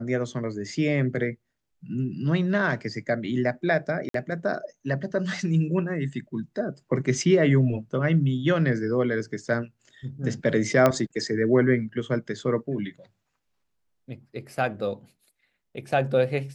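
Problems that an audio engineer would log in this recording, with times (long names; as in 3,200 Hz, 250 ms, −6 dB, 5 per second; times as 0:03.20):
0:04.09–0:04.14: drop-out 53 ms
0:10.86: click −7 dBFS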